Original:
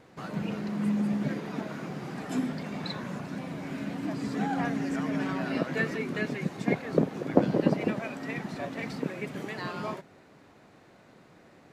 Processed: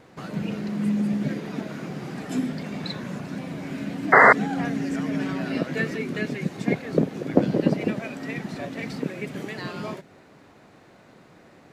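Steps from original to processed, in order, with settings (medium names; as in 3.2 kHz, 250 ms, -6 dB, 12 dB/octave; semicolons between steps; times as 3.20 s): dynamic bell 1 kHz, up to -6 dB, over -46 dBFS, Q 1.1; painted sound noise, 4.12–4.33 s, 360–2100 Hz -16 dBFS; trim +4 dB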